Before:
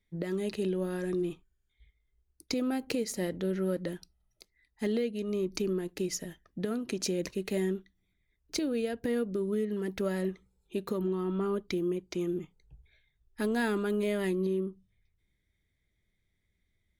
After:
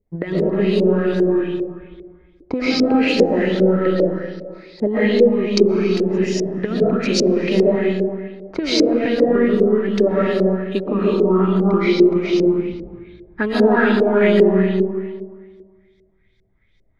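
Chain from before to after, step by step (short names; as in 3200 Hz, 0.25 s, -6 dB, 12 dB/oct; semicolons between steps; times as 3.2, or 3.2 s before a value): transient shaper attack +6 dB, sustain -2 dB; digital reverb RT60 1.7 s, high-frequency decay 0.75×, pre-delay 90 ms, DRR -6.5 dB; LFO low-pass saw up 2.5 Hz 440–5500 Hz; gain +5.5 dB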